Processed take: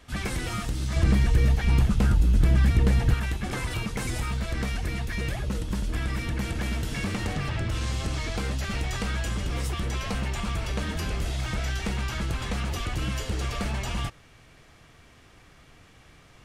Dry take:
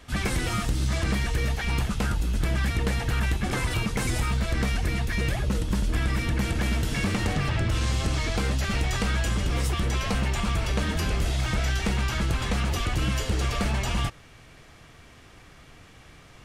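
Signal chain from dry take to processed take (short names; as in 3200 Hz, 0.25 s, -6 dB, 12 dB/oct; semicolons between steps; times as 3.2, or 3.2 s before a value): 0.96–3.14 low shelf 390 Hz +10 dB; gain -3.5 dB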